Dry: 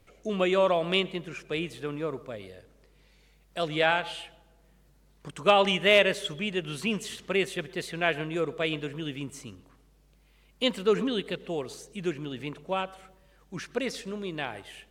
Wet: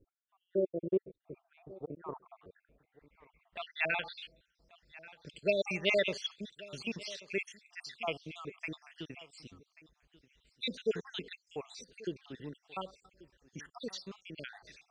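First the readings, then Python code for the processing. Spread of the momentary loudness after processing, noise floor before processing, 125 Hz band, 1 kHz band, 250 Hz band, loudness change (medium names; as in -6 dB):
20 LU, -61 dBFS, -11.5 dB, -15.5 dB, -10.5 dB, -9.0 dB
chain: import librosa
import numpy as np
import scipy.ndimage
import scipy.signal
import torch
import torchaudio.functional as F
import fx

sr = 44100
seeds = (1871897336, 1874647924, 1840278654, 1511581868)

y = fx.spec_dropout(x, sr, seeds[0], share_pct=66)
y = fx.filter_sweep_lowpass(y, sr, from_hz=370.0, to_hz=5300.0, start_s=0.78, end_s=4.7, q=3.3)
y = y + 10.0 ** (-20.0 / 20.0) * np.pad(y, (int(1135 * sr / 1000.0), 0))[:len(y)]
y = y * librosa.db_to_amplitude(-7.0)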